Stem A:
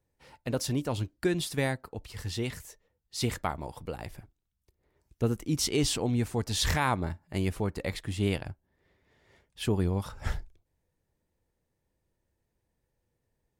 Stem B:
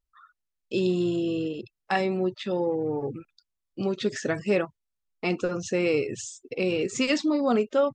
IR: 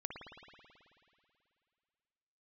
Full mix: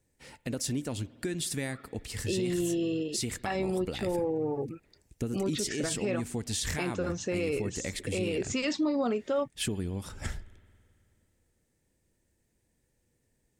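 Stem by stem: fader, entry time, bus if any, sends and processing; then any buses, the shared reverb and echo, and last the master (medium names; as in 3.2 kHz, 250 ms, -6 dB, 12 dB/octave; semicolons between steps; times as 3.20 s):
+2.0 dB, 0.00 s, send -15.5 dB, compression 4:1, threshold -36 dBFS, peak gain reduction 13 dB; graphic EQ 250/1000/2000/8000 Hz +5/-5/+4/+10 dB
-2.5 dB, 1.55 s, no send, none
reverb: on, RT60 2.5 s, pre-delay 54 ms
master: peak limiter -21.5 dBFS, peak gain reduction 8.5 dB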